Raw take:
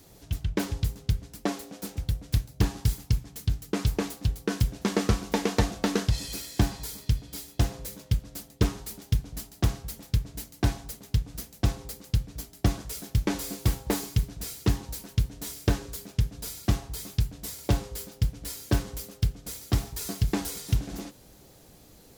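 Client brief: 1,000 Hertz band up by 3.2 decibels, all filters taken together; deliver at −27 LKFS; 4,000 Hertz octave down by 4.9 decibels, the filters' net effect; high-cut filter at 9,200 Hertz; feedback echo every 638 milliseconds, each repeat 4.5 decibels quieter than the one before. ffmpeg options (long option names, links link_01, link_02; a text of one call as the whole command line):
ffmpeg -i in.wav -af "lowpass=9200,equalizer=frequency=1000:width_type=o:gain=4.5,equalizer=frequency=4000:width_type=o:gain=-6.5,aecho=1:1:638|1276|1914|2552|3190|3828|4466|5104|5742:0.596|0.357|0.214|0.129|0.0772|0.0463|0.0278|0.0167|0.01,volume=2dB" out.wav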